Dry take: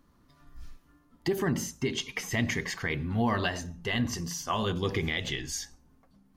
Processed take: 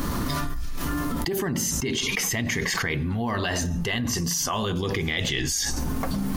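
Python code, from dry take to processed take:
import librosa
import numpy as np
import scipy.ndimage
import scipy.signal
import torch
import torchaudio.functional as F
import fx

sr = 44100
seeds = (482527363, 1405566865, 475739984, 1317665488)

y = fx.high_shelf(x, sr, hz=6500.0, db=6.5)
y = fx.env_flatten(y, sr, amount_pct=100)
y = F.gain(torch.from_numpy(y), -2.5).numpy()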